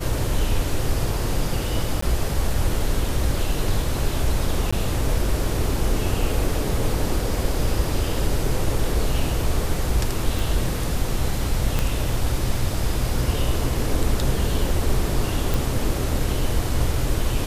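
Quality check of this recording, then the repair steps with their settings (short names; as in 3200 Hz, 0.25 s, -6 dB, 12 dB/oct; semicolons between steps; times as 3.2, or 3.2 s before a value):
2.01–2.02 gap 14 ms
4.71–4.72 gap 15 ms
10.39 pop
11.79 pop -8 dBFS
15.54 pop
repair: de-click; interpolate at 2.01, 14 ms; interpolate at 4.71, 15 ms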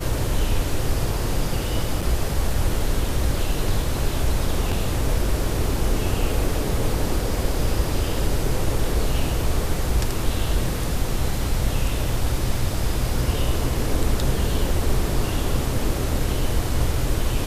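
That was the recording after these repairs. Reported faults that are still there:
11.79 pop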